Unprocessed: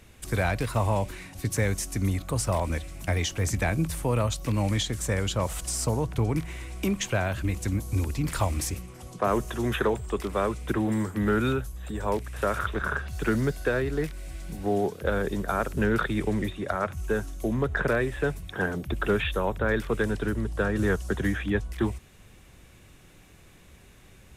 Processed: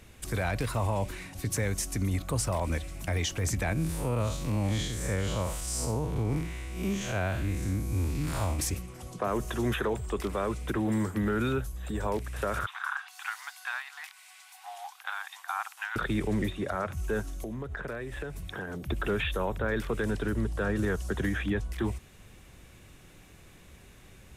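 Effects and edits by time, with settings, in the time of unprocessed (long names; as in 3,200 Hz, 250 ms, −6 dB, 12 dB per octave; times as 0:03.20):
0:03.73–0:08.59: spectrum smeared in time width 140 ms
0:12.66–0:15.96: Chebyshev high-pass with heavy ripple 750 Hz, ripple 3 dB
0:17.21–0:18.88: downward compressor 8 to 1, threshold −33 dBFS
whole clip: brickwall limiter −20.5 dBFS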